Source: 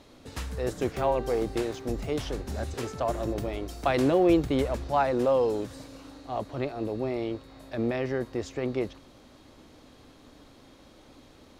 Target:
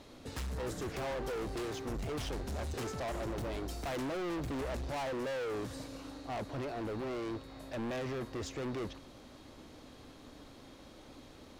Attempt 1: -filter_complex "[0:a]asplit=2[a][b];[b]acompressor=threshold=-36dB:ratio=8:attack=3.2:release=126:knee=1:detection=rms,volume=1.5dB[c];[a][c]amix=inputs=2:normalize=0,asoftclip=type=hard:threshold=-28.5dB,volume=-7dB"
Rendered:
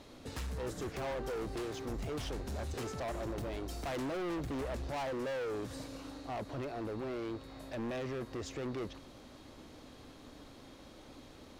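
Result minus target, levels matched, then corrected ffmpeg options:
compressor: peak gain reduction +10 dB
-filter_complex "[0:a]asplit=2[a][b];[b]acompressor=threshold=-24.5dB:ratio=8:attack=3.2:release=126:knee=1:detection=rms,volume=1.5dB[c];[a][c]amix=inputs=2:normalize=0,asoftclip=type=hard:threshold=-28.5dB,volume=-7dB"

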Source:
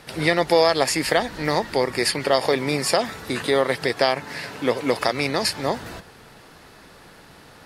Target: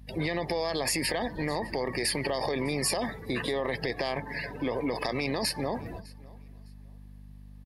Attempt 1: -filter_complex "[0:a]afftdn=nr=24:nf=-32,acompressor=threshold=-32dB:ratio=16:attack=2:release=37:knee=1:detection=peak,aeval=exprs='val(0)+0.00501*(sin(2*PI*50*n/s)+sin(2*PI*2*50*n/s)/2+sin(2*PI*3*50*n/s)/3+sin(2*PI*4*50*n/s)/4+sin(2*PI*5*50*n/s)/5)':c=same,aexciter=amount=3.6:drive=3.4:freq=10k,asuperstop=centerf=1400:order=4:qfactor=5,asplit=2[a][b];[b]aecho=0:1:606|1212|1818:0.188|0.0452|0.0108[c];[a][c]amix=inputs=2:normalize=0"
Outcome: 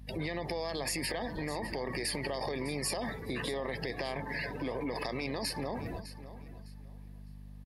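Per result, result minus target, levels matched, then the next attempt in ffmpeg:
echo-to-direct +9.5 dB; compressor: peak gain reduction +6 dB
-filter_complex "[0:a]afftdn=nr=24:nf=-32,acompressor=threshold=-32dB:ratio=16:attack=2:release=37:knee=1:detection=peak,aeval=exprs='val(0)+0.00501*(sin(2*PI*50*n/s)+sin(2*PI*2*50*n/s)/2+sin(2*PI*3*50*n/s)/3+sin(2*PI*4*50*n/s)/4+sin(2*PI*5*50*n/s)/5)':c=same,aexciter=amount=3.6:drive=3.4:freq=10k,asuperstop=centerf=1400:order=4:qfactor=5,asplit=2[a][b];[b]aecho=0:1:606|1212:0.0631|0.0151[c];[a][c]amix=inputs=2:normalize=0"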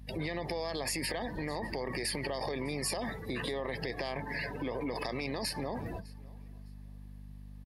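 compressor: peak gain reduction +6 dB
-filter_complex "[0:a]afftdn=nr=24:nf=-32,acompressor=threshold=-25.5dB:ratio=16:attack=2:release=37:knee=1:detection=peak,aeval=exprs='val(0)+0.00501*(sin(2*PI*50*n/s)+sin(2*PI*2*50*n/s)/2+sin(2*PI*3*50*n/s)/3+sin(2*PI*4*50*n/s)/4+sin(2*PI*5*50*n/s)/5)':c=same,aexciter=amount=3.6:drive=3.4:freq=10k,asuperstop=centerf=1400:order=4:qfactor=5,asplit=2[a][b];[b]aecho=0:1:606|1212:0.0631|0.0151[c];[a][c]amix=inputs=2:normalize=0"

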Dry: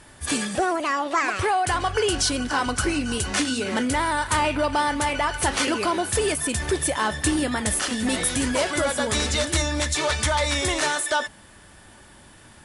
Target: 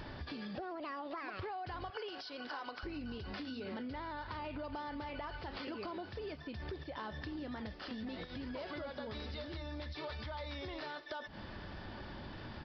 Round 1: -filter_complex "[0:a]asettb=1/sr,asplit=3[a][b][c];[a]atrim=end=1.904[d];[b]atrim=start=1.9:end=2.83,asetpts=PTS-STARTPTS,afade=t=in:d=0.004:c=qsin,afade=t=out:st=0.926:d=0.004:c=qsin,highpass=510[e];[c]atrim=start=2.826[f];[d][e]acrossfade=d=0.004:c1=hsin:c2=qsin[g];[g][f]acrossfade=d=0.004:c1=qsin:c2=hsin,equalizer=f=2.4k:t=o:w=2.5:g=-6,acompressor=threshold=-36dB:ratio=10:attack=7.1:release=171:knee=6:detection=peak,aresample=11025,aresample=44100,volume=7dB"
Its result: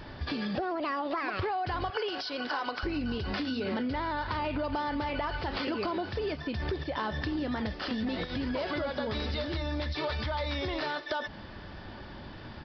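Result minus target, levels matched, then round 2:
compressor: peak gain reduction -11 dB
-filter_complex "[0:a]asettb=1/sr,asplit=3[a][b][c];[a]atrim=end=1.904[d];[b]atrim=start=1.9:end=2.83,asetpts=PTS-STARTPTS,afade=t=in:d=0.004:c=qsin,afade=t=out:st=0.926:d=0.004:c=qsin,highpass=510[e];[c]atrim=start=2.826[f];[d][e]acrossfade=d=0.004:c1=hsin:c2=qsin[g];[g][f]acrossfade=d=0.004:c1=qsin:c2=hsin,equalizer=f=2.4k:t=o:w=2.5:g=-6,acompressor=threshold=-48dB:ratio=10:attack=7.1:release=171:knee=6:detection=peak,aresample=11025,aresample=44100,volume=7dB"

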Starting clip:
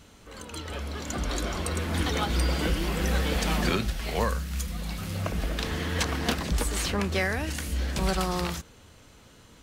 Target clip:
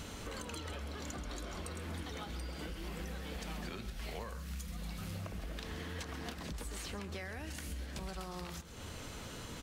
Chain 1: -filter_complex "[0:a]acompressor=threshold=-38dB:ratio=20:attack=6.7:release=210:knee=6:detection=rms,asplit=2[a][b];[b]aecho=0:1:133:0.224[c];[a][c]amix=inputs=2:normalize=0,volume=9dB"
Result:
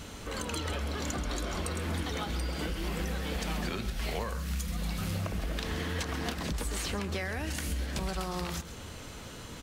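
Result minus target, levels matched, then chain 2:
compressor: peak gain reduction -9 dB
-filter_complex "[0:a]acompressor=threshold=-47.5dB:ratio=20:attack=6.7:release=210:knee=6:detection=rms,asplit=2[a][b];[b]aecho=0:1:133:0.224[c];[a][c]amix=inputs=2:normalize=0,volume=9dB"

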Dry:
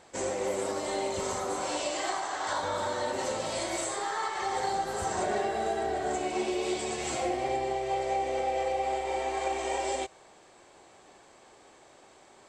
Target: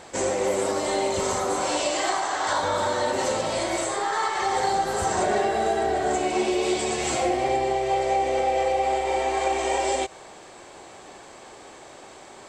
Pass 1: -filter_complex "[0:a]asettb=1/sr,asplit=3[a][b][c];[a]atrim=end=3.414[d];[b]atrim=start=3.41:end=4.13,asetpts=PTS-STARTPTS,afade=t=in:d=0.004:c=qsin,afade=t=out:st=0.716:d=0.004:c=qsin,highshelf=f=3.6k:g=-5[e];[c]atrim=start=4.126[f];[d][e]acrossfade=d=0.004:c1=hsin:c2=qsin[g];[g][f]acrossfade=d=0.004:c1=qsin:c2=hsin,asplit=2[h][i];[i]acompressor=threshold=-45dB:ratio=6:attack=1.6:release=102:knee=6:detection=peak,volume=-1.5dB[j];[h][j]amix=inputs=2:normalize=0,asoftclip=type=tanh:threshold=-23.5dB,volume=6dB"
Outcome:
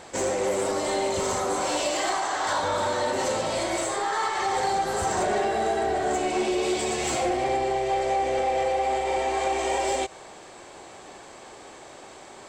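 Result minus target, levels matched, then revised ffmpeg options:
soft clip: distortion +20 dB
-filter_complex "[0:a]asettb=1/sr,asplit=3[a][b][c];[a]atrim=end=3.414[d];[b]atrim=start=3.41:end=4.13,asetpts=PTS-STARTPTS,afade=t=in:d=0.004:c=qsin,afade=t=out:st=0.716:d=0.004:c=qsin,highshelf=f=3.6k:g=-5[e];[c]atrim=start=4.126[f];[d][e]acrossfade=d=0.004:c1=hsin:c2=qsin[g];[g][f]acrossfade=d=0.004:c1=qsin:c2=hsin,asplit=2[h][i];[i]acompressor=threshold=-45dB:ratio=6:attack=1.6:release=102:knee=6:detection=peak,volume=-1.5dB[j];[h][j]amix=inputs=2:normalize=0,asoftclip=type=tanh:threshold=-12dB,volume=6dB"

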